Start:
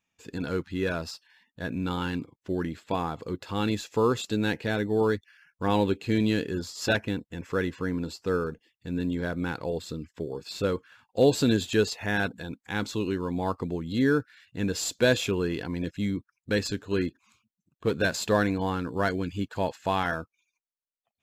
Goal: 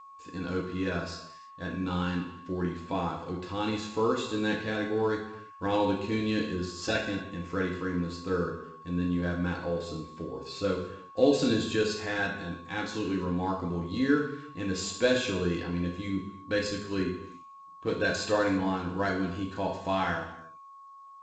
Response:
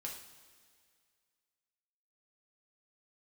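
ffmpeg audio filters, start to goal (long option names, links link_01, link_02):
-filter_complex "[1:a]atrim=start_sample=2205,afade=type=out:start_time=0.4:duration=0.01,atrim=end_sample=18081[link_01];[0:a][link_01]afir=irnorm=-1:irlink=0,aeval=exprs='val(0)+0.00447*sin(2*PI*1100*n/s)':channel_layout=same" -ar 16000 -c:a g722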